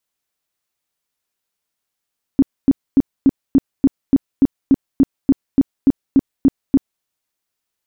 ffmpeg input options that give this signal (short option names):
-f lavfi -i "aevalsrc='0.473*sin(2*PI*272*mod(t,0.29))*lt(mod(t,0.29),9/272)':d=4.64:s=44100"